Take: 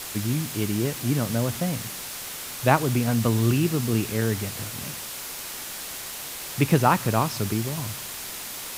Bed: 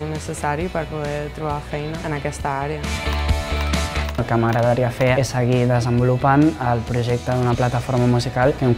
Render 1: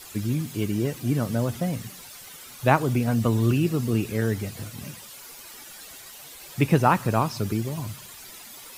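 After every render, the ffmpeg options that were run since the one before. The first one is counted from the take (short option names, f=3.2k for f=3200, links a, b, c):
-af "afftdn=nr=12:nf=-36"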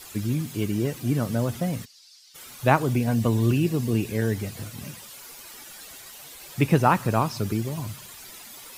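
-filter_complex "[0:a]asplit=3[a][b][c];[a]afade=t=out:st=1.84:d=0.02[d];[b]bandpass=f=4.8k:t=q:w=3.7,afade=t=in:st=1.84:d=0.02,afade=t=out:st=2.34:d=0.02[e];[c]afade=t=in:st=2.34:d=0.02[f];[d][e][f]amix=inputs=3:normalize=0,asettb=1/sr,asplit=3[g][h][i];[g]atrim=end=2.914[j];[h]atrim=start=2.91:end=4.38,asetpts=PTS-STARTPTS,afade=t=in:d=0.004:c=qsin,afade=t=out:st=1.466:d=0.004:c=qsin,bandreject=f=1.3k:w=5.7[k];[i]atrim=start=4.376[l];[j][k]acrossfade=d=0.004:c1=hsin:c2=qsin[m];[m][l]acrossfade=d=0.004:c1=qsin:c2=hsin"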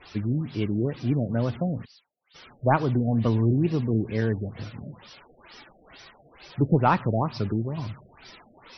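-af "asoftclip=type=tanh:threshold=-7.5dB,afftfilt=real='re*lt(b*sr/1024,720*pow(6100/720,0.5+0.5*sin(2*PI*2.2*pts/sr)))':imag='im*lt(b*sr/1024,720*pow(6100/720,0.5+0.5*sin(2*PI*2.2*pts/sr)))':win_size=1024:overlap=0.75"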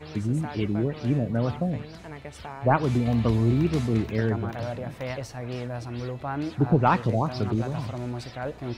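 -filter_complex "[1:a]volume=-16dB[a];[0:a][a]amix=inputs=2:normalize=0"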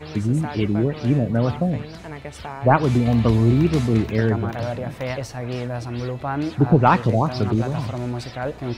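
-af "volume=5.5dB"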